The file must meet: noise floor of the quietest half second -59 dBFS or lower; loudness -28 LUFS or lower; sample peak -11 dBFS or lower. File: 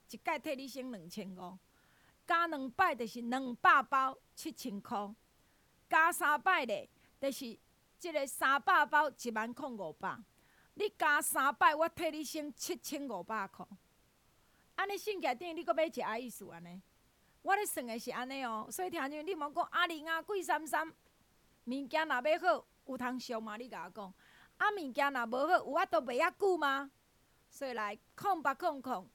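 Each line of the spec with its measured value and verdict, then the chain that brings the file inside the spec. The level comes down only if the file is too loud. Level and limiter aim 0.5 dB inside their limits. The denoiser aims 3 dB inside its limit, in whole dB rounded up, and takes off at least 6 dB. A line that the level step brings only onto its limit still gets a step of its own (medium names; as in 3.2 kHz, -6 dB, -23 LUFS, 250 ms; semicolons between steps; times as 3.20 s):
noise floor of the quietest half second -71 dBFS: pass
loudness -35.0 LUFS: pass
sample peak -14.0 dBFS: pass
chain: none needed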